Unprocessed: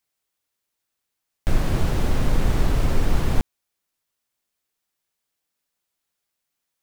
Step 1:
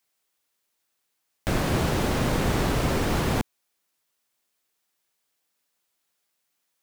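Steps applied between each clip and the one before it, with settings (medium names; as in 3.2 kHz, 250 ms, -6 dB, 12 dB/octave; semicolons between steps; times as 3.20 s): high-pass 180 Hz 6 dB/octave; trim +4 dB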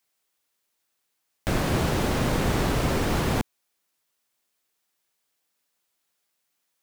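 no audible change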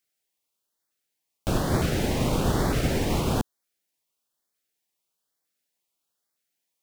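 LFO notch saw up 1.1 Hz 860–3000 Hz; upward expansion 1.5:1, over -33 dBFS; trim +1.5 dB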